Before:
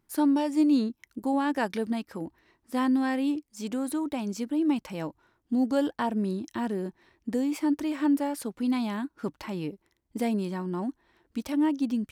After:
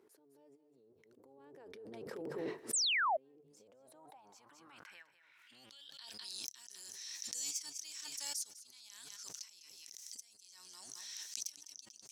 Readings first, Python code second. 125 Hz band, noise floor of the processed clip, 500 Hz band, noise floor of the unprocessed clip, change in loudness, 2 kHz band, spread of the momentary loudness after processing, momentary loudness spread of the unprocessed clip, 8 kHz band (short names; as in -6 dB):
-24.0 dB, -68 dBFS, -15.5 dB, -75 dBFS, -11.5 dB, -4.0 dB, 23 LU, 12 LU, +6.0 dB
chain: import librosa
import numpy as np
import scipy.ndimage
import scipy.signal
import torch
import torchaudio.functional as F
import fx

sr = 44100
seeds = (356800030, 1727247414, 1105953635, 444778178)

y = fx.octave_divider(x, sr, octaves=1, level_db=2.0)
y = fx.over_compress(y, sr, threshold_db=-34.0, ratio=-1.0)
y = fx.filter_sweep_bandpass(y, sr, from_hz=430.0, to_hz=6000.0, start_s=3.43, end_s=6.41, q=5.8)
y = y + 10.0 ** (-15.5 / 20.0) * np.pad(y, (int(203 * sr / 1000.0), 0))[:len(y)]
y = fx.clip_asym(y, sr, top_db=-33.5, bottom_db=-29.0)
y = np.diff(y, prepend=0.0)
y = fx.hum_notches(y, sr, base_hz=50, count=3)
y = fx.spec_paint(y, sr, seeds[0], shape='fall', start_s=2.73, length_s=0.44, low_hz=580.0, high_hz=8900.0, level_db=-37.0)
y = fx.low_shelf(y, sr, hz=230.0, db=9.5)
y = fx.pre_swell(y, sr, db_per_s=20.0)
y = F.gain(torch.from_numpy(y), 4.5).numpy()